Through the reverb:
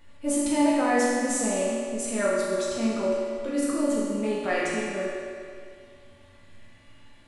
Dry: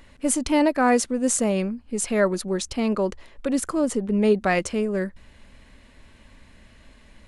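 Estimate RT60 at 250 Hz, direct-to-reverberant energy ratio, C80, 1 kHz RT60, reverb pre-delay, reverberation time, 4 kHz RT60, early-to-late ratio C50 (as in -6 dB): 2.2 s, -8.0 dB, -0.5 dB, 2.2 s, 3 ms, 2.2 s, 2.0 s, -2.5 dB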